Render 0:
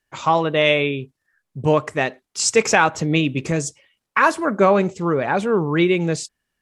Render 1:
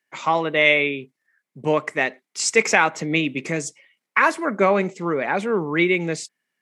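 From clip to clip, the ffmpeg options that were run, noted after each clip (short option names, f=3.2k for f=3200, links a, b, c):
-af "highpass=f=170:w=0.5412,highpass=f=170:w=1.3066,equalizer=f=2.1k:t=o:w=0.38:g=10,volume=-3dB"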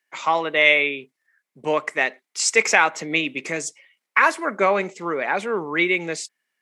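-af "highpass=f=540:p=1,volume=1.5dB"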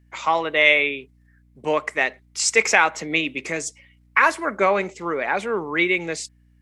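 -af "aeval=exprs='val(0)+0.00178*(sin(2*PI*60*n/s)+sin(2*PI*2*60*n/s)/2+sin(2*PI*3*60*n/s)/3+sin(2*PI*4*60*n/s)/4+sin(2*PI*5*60*n/s)/5)':c=same"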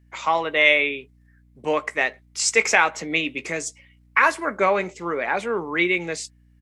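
-filter_complex "[0:a]asplit=2[a][b];[b]adelay=17,volume=-13dB[c];[a][c]amix=inputs=2:normalize=0,volume=-1dB"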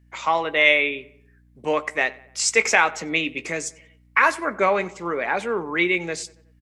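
-filter_complex "[0:a]asplit=2[a][b];[b]adelay=93,lowpass=f=2.5k:p=1,volume=-20dB,asplit=2[c][d];[d]adelay=93,lowpass=f=2.5k:p=1,volume=0.52,asplit=2[e][f];[f]adelay=93,lowpass=f=2.5k:p=1,volume=0.52,asplit=2[g][h];[h]adelay=93,lowpass=f=2.5k:p=1,volume=0.52[i];[a][c][e][g][i]amix=inputs=5:normalize=0"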